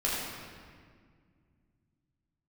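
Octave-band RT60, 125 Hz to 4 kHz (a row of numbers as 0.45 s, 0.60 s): 3.7 s, 3.1 s, 2.0 s, 1.8 s, 1.7 s, 1.4 s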